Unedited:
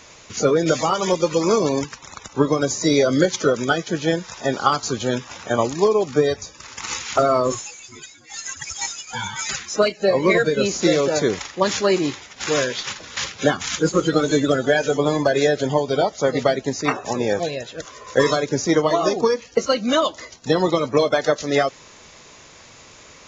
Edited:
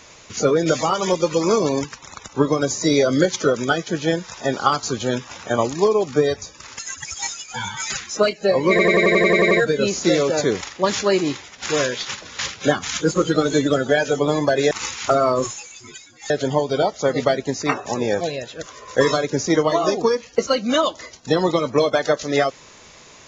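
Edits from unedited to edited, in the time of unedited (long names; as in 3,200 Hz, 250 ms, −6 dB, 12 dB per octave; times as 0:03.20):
0:06.79–0:08.38: move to 0:15.49
0:10.29: stutter 0.09 s, 10 plays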